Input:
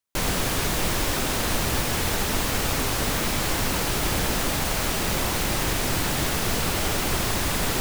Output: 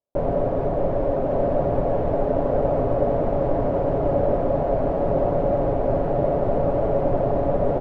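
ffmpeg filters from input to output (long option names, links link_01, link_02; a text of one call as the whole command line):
ffmpeg -i in.wav -filter_complex "[0:a]lowpass=frequency=600:width_type=q:width=4.9,aecho=1:1:7.2:0.37,asplit=2[link_01][link_02];[link_02]aecho=0:1:1130:0.596[link_03];[link_01][link_03]amix=inputs=2:normalize=0" out.wav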